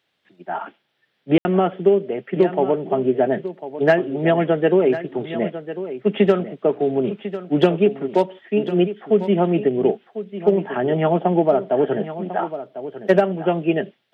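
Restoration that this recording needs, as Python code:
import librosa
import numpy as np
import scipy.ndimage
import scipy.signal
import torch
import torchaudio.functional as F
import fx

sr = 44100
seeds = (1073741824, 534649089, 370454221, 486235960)

y = fx.fix_ambience(x, sr, seeds[0], print_start_s=0.0, print_end_s=0.5, start_s=1.38, end_s=1.45)
y = fx.fix_echo_inverse(y, sr, delay_ms=1048, level_db=-12.5)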